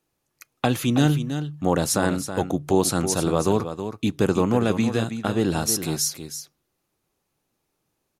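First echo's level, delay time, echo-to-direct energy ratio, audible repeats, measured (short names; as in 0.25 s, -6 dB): -9.5 dB, 0.323 s, -9.5 dB, 1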